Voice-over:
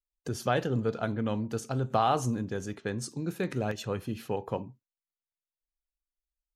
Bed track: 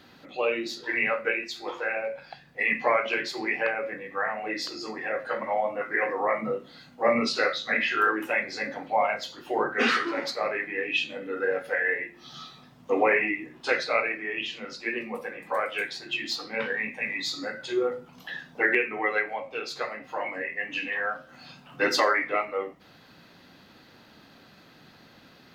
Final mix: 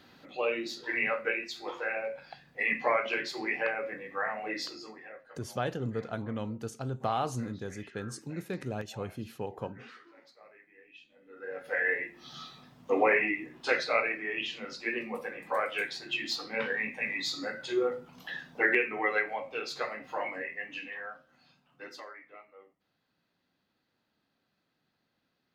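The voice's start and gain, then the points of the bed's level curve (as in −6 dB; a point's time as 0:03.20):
5.10 s, −5.0 dB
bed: 0:04.64 −4 dB
0:05.48 −28 dB
0:11.10 −28 dB
0:11.79 −2.5 dB
0:20.22 −2.5 dB
0:22.13 −25 dB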